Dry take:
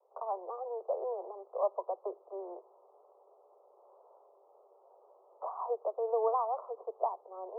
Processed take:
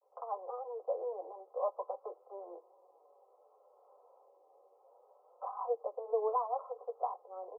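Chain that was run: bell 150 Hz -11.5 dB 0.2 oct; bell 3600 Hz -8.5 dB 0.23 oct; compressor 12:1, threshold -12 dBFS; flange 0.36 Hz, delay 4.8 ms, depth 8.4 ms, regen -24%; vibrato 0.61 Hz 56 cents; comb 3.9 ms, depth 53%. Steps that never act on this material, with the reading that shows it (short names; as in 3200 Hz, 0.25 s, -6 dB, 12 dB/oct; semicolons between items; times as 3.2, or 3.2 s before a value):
bell 150 Hz: input band starts at 340 Hz; bell 3600 Hz: input band ends at 1300 Hz; compressor, threshold -12 dBFS: input peak -18.0 dBFS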